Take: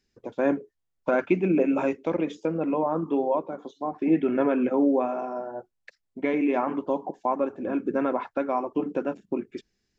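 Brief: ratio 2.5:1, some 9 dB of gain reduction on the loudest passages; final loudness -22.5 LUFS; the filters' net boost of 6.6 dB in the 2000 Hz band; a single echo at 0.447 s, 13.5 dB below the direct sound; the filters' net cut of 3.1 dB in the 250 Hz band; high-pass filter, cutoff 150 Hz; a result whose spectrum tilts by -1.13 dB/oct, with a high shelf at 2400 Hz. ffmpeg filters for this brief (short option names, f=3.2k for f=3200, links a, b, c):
-af "highpass=150,equalizer=f=250:t=o:g=-3.5,equalizer=f=2k:t=o:g=7,highshelf=f=2.4k:g=3.5,acompressor=threshold=-32dB:ratio=2.5,aecho=1:1:447:0.211,volume=12dB"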